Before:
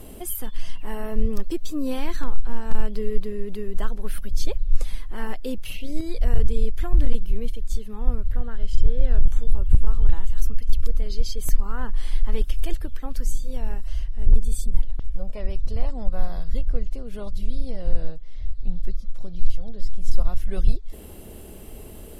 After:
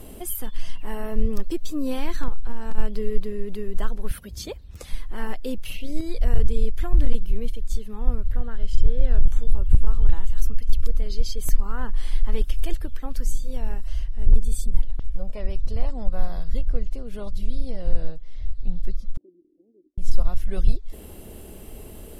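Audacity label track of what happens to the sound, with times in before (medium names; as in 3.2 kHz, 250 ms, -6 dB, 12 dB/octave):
2.280000	2.780000	compression, threshold -13 dBFS
4.110000	4.900000	high-pass 55 Hz 24 dB/octave
19.170000	19.980000	Butterworth band-pass 330 Hz, Q 4.2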